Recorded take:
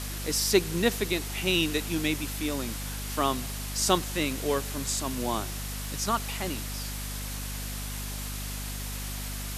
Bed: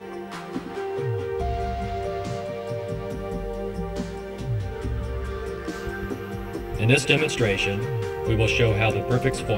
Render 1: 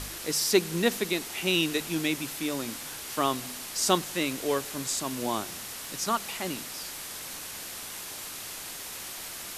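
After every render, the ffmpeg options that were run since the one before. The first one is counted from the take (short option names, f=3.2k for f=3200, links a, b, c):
-af "bandreject=f=50:t=h:w=4,bandreject=f=100:t=h:w=4,bandreject=f=150:t=h:w=4,bandreject=f=200:t=h:w=4,bandreject=f=250:t=h:w=4"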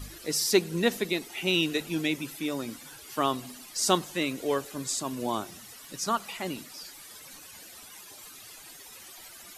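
-af "afftdn=nr=14:nf=-40"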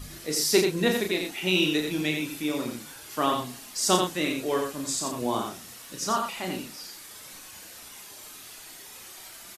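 -filter_complex "[0:a]asplit=2[a][b];[b]adelay=33,volume=-5dB[c];[a][c]amix=inputs=2:normalize=0,aecho=1:1:86:0.562"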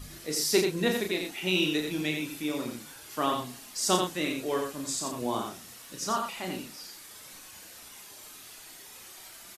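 -af "volume=-3dB"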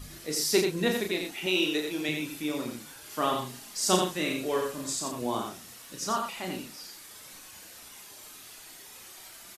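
-filter_complex "[0:a]asettb=1/sr,asplit=3[a][b][c];[a]atrim=end=1.464[d];[b]atrim=start=1.46:end=2.09,asetpts=PTS-STARTPTS,afade=t=in:d=0.004:c=qsin,afade=t=out:st=0.626:d=0.004:c=qsin,lowshelf=f=280:t=q:w=1.5:g=-7.5[e];[c]atrim=start=2.086[f];[d][e]acrossfade=d=0.004:c1=hsin:c2=qsin[g];[g][f]acrossfade=d=0.004:c1=qsin:c2=hsin,asettb=1/sr,asplit=3[h][i][j];[h]atrim=end=3.004[k];[i]atrim=start=3:end=4.93,asetpts=PTS-STARTPTS,afade=t=in:d=0.004:c=qsin,afade=t=out:st=1.926:d=0.004:c=qsin,asplit=2[l][m];[m]adelay=38,volume=-5.5dB[n];[l][n]amix=inputs=2:normalize=0,atrim=end_sample=85113[o];[j]atrim=start=4.926[p];[k][o]acrossfade=d=0.004:c1=hsin:c2=qsin[q];[q][p]acrossfade=d=0.004:c1=qsin:c2=hsin"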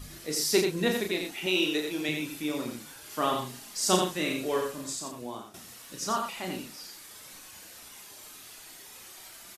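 -filter_complex "[0:a]asplit=2[a][b];[a]atrim=end=5.54,asetpts=PTS-STARTPTS,afade=t=out:st=4.57:d=0.97:silence=0.199526[c];[b]atrim=start=5.54,asetpts=PTS-STARTPTS,afade=t=in:d=0.004:c=hsin:silence=0.199526[d];[c][d]concat=n=2:v=0:a=1"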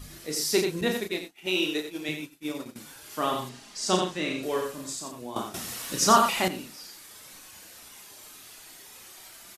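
-filter_complex "[0:a]asettb=1/sr,asplit=3[a][b][c];[a]atrim=end=0.814[d];[b]atrim=start=0.81:end=2.76,asetpts=PTS-STARTPTS,afade=t=in:d=0.004:c=qsin,afade=t=out:st=1.946:d=0.004:c=qsin,agate=range=-33dB:threshold=-29dB:ratio=3:release=100:detection=peak[e];[c]atrim=start=2.756[f];[d][e]acrossfade=d=0.004:c1=hsin:c2=qsin[g];[g][f]acrossfade=d=0.004:c1=qsin:c2=hsin,asettb=1/sr,asplit=3[h][i][j];[h]atrim=end=3.494[k];[i]atrim=start=3.49:end=4.43,asetpts=PTS-STARTPTS,afade=t=in:d=0.004:c=qsin,afade=t=out:st=0.936:d=0.004:c=qsin,lowpass=6.6k[l];[j]atrim=start=4.426[m];[k][l]acrossfade=d=0.004:c1=hsin:c2=qsin[n];[n][m]acrossfade=d=0.004:c1=qsin:c2=hsin,asplit=3[o][p][q];[o]atrim=end=5.362[r];[p]atrim=start=5.358:end=6.482,asetpts=PTS-STARTPTS,volume=11dB[s];[q]atrim=start=6.478[t];[r][s]acrossfade=d=0.004:c1=hsin:c2=hsin[u];[u][t]acrossfade=d=0.004:c1=hsin:c2=hsin"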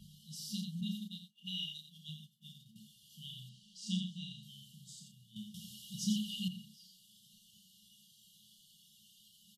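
-filter_complex "[0:a]afftfilt=real='re*(1-between(b*sr/4096,220,2800))':imag='im*(1-between(b*sr/4096,220,2800))':win_size=4096:overlap=0.75,acrossover=split=160 2600:gain=0.0794 1 0.112[a][b][c];[a][b][c]amix=inputs=3:normalize=0"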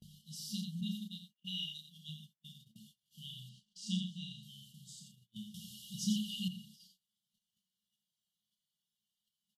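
-af "agate=range=-26dB:threshold=-59dB:ratio=16:detection=peak"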